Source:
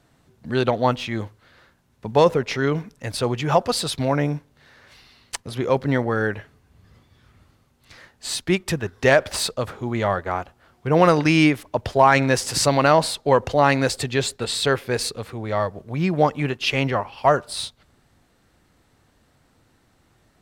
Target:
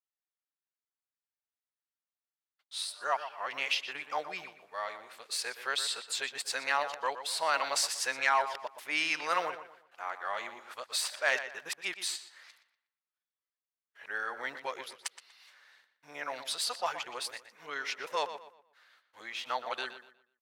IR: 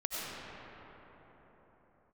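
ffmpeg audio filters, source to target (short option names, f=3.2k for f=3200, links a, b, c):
-filter_complex "[0:a]areverse,highpass=1.1k,agate=range=-31dB:threshold=-58dB:ratio=16:detection=peak,asplit=2[a][b];[b]adelay=121,lowpass=f=4.2k:p=1,volume=-11dB,asplit=2[c][d];[d]adelay=121,lowpass=f=4.2k:p=1,volume=0.33,asplit=2[e][f];[f]adelay=121,lowpass=f=4.2k:p=1,volume=0.33,asplit=2[g][h];[h]adelay=121,lowpass=f=4.2k:p=1,volume=0.33[i];[a][c][e][g][i]amix=inputs=5:normalize=0,volume=-7.5dB"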